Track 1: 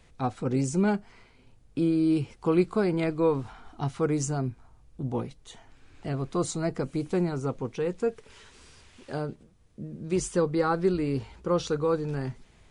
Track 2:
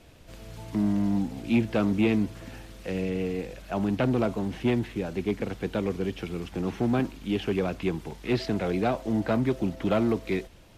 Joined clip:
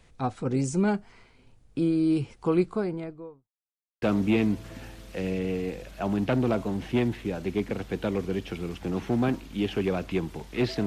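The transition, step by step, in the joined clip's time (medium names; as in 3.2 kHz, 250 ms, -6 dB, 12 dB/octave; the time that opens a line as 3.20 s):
track 1
2.41–3.50 s: studio fade out
3.50–4.02 s: mute
4.02 s: go over to track 2 from 1.73 s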